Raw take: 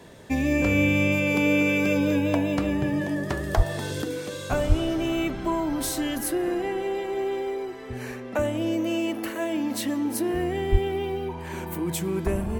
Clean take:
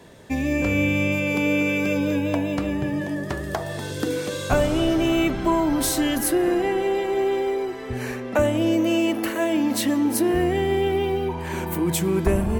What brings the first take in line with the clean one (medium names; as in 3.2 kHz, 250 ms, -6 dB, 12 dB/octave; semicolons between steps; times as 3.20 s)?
de-plosive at 3.56/4.68/10.71 s; gain correction +5.5 dB, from 4.02 s